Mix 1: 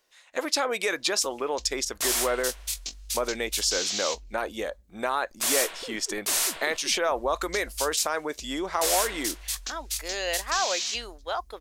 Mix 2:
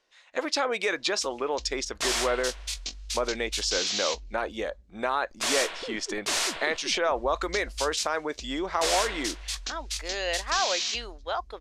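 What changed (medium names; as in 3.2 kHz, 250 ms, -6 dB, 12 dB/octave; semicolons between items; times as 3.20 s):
background +3.0 dB; master: add low-pass 5.4 kHz 12 dB/octave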